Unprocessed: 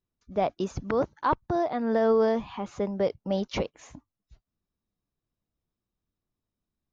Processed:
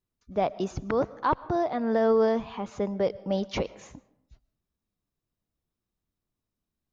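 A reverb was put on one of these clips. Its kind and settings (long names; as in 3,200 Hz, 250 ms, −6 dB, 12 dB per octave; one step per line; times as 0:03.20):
comb and all-pass reverb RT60 0.79 s, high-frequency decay 0.55×, pre-delay 75 ms, DRR 19.5 dB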